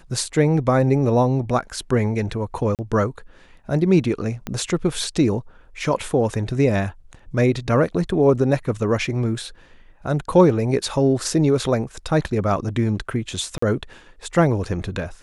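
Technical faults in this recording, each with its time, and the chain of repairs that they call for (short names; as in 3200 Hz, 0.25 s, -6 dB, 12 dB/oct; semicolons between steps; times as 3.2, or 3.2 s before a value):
2.75–2.79 gap 38 ms
4.47 pop -13 dBFS
13.58–13.62 gap 44 ms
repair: de-click; interpolate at 2.75, 38 ms; interpolate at 13.58, 44 ms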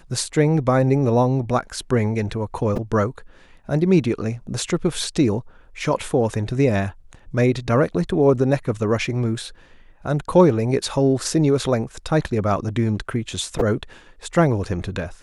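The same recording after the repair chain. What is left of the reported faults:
4.47 pop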